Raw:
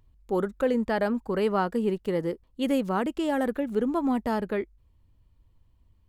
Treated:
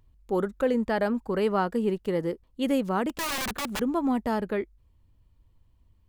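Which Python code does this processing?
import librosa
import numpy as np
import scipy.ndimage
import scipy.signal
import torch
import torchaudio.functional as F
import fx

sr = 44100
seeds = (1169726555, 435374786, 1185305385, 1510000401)

y = fx.overflow_wrap(x, sr, gain_db=25.5, at=(3.09, 3.79), fade=0.02)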